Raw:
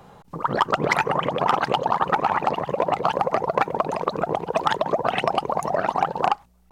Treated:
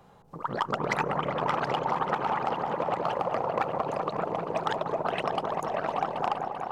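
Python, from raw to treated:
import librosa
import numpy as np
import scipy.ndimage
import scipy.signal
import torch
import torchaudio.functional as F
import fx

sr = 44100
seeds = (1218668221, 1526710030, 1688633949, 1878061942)

y = fx.echo_opening(x, sr, ms=195, hz=750, octaves=1, feedback_pct=70, wet_db=-3)
y = fx.doppler_dist(y, sr, depth_ms=0.11)
y = y * librosa.db_to_amplitude(-8.5)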